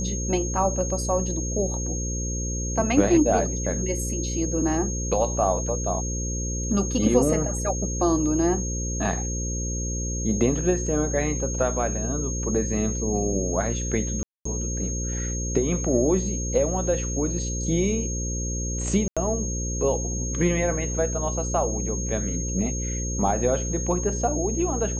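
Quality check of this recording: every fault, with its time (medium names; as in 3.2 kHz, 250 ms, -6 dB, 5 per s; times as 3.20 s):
buzz 60 Hz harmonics 9 -29 dBFS
whine 6.5 kHz -31 dBFS
14.23–14.45 s: dropout 224 ms
19.08–19.17 s: dropout 86 ms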